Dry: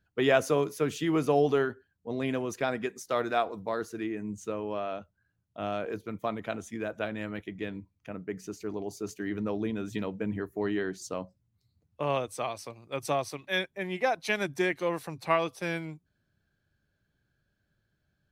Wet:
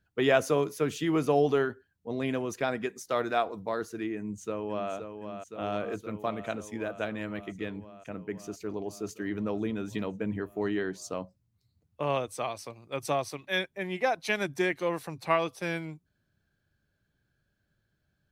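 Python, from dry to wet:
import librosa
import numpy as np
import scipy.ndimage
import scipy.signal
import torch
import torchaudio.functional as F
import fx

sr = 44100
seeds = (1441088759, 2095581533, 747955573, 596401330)

y = fx.echo_throw(x, sr, start_s=4.17, length_s=0.74, ms=520, feedback_pct=80, wet_db=-7.5)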